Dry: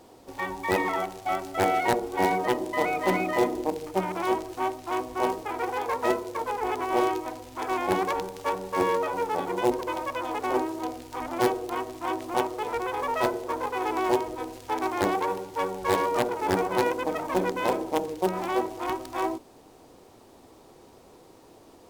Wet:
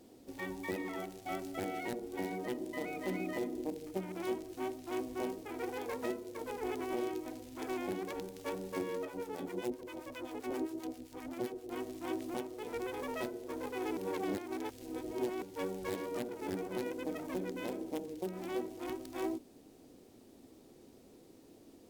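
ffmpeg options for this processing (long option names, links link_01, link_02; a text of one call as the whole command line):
ffmpeg -i in.wav -filter_complex "[0:a]asettb=1/sr,asplit=3[link_01][link_02][link_03];[link_01]atrim=end=9.054[link_04];[link_02]atrim=start=9.05:end=11.7,asetpts=PTS-STARTPTS,afade=type=in:duration=0.004:curve=qsin,afade=type=out:start_time=2.646:duration=0.004:curve=qsin,acrossover=split=880[link_05][link_06];[link_05]aeval=exprs='val(0)*(1-0.7/2+0.7/2*cos(2*PI*7.6*n/s))':channel_layout=same[link_07];[link_06]aeval=exprs='val(0)*(1-0.7/2-0.7/2*cos(2*PI*7.6*n/s))':channel_layout=same[link_08];[link_07][link_08]amix=inputs=2:normalize=0[link_09];[link_03]atrim=start=11.696[link_10];[link_04][link_09]acrossfade=duration=0.004:curve1=hsin:curve2=qsin[link_11];[link_11][link_10]acrossfade=duration=0.004:curve1=qsin:curve2=hsin,asplit=3[link_12][link_13][link_14];[link_12]atrim=end=13.972[link_15];[link_13]atrim=start=13.968:end=15.422,asetpts=PTS-STARTPTS,areverse[link_16];[link_14]atrim=start=15.418[link_17];[link_15][link_16]acrossfade=duration=0.004:curve1=hsin:curve2=hsin[link_18];[link_18][link_17]acrossfade=duration=0.004:curve1=hsin:curve2=hsin,equalizer=frequency=250:width_type=o:width=1:gain=8,equalizer=frequency=1000:width_type=o:width=1:gain=-10,equalizer=frequency=16000:width_type=o:width=1:gain=4,alimiter=limit=-18dB:level=0:latency=1:release=398,volume=-8dB" out.wav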